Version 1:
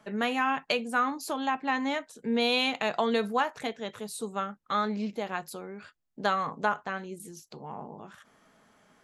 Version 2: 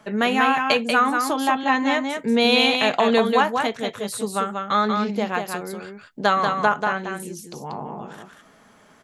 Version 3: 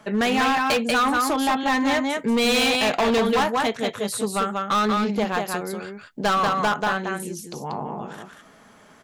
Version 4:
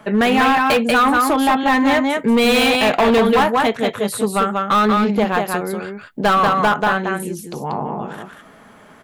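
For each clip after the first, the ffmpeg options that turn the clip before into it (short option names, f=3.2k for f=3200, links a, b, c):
-af "aecho=1:1:188:0.562,volume=8dB"
-af "asoftclip=type=hard:threshold=-19dB,volume=2dB"
-af "equalizer=f=5.9k:w=1:g=-8.5,volume=6.5dB"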